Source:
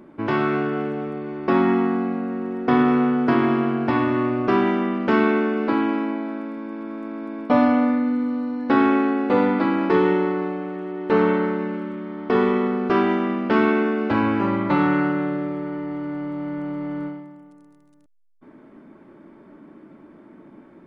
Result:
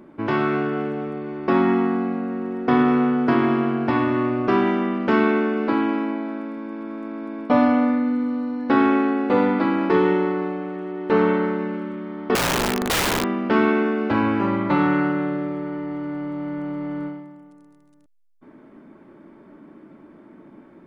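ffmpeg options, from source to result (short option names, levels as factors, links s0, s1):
-filter_complex "[0:a]asettb=1/sr,asplit=3[s0][s1][s2];[s0]atrim=end=12.354[s3];[s1]atrim=start=12.35:end=13.24,asetpts=PTS-STARTPTS,afade=t=in:d=0.004:c=qsin,afade=t=out:st=0.886:d=0.004:c=qsin,aeval=exprs='(mod(6.31*val(0)+1,2)-1)/6.31':c=same[s4];[s2]atrim=start=13.236[s5];[s3][s4]acrossfade=d=0.004:c1=hsin:c2=qsin[s6];[s6][s5]acrossfade=d=0.004:c1=qsin:c2=hsin"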